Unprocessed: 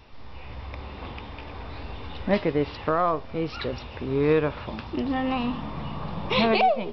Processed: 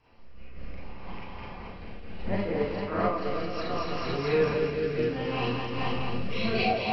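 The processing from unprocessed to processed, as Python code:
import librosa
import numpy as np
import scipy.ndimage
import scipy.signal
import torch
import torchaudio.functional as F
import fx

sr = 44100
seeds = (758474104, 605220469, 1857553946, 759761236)

y = fx.octave_divider(x, sr, octaves=1, level_db=0.0)
y = fx.low_shelf(y, sr, hz=440.0, db=-6.0)
y = fx.notch(y, sr, hz=3600.0, q=5.0)
y = fx.echo_heads(y, sr, ms=218, heads='all three', feedback_pct=45, wet_db=-6.5)
y = fx.rotary(y, sr, hz=0.65)
y = fx.high_shelf(y, sr, hz=3500.0, db=fx.steps((0.0, -5.0), (3.12, 9.5)))
y = fx.rev_schroeder(y, sr, rt60_s=0.34, comb_ms=32, drr_db=-6.0)
y = fx.am_noise(y, sr, seeds[0], hz=5.7, depth_pct=60)
y = y * librosa.db_to_amplitude(-5.0)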